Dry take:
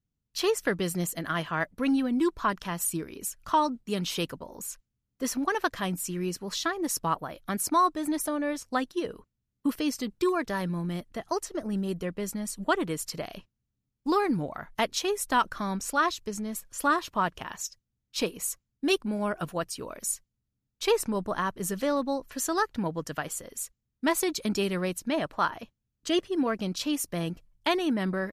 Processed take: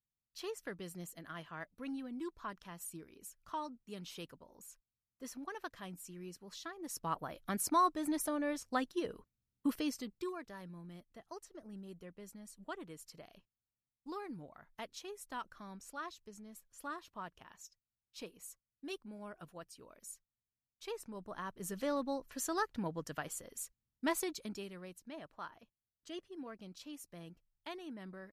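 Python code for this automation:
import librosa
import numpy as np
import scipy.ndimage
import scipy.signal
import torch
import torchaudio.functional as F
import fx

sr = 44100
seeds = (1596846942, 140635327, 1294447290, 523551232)

y = fx.gain(x, sr, db=fx.line((6.77, -17.0), (7.25, -6.5), (9.76, -6.5), (10.49, -19.0), (21.04, -19.0), (21.88, -8.5), (24.14, -8.5), (24.74, -20.0)))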